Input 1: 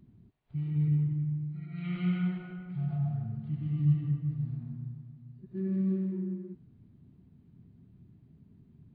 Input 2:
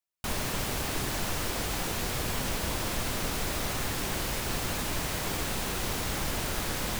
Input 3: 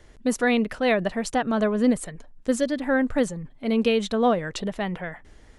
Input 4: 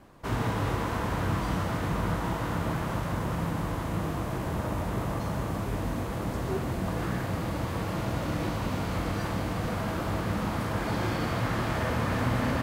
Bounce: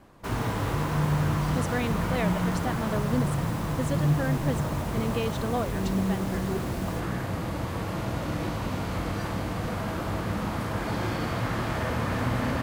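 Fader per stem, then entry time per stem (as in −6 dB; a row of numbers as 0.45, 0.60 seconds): +1.0, −12.5, −9.0, 0.0 decibels; 0.20, 0.00, 1.30, 0.00 seconds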